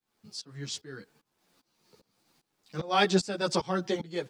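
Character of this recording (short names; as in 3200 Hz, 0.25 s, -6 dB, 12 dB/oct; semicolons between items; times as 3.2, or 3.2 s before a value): a quantiser's noise floor 12-bit, dither none; tremolo saw up 2.5 Hz, depth 95%; a shimmering, thickened sound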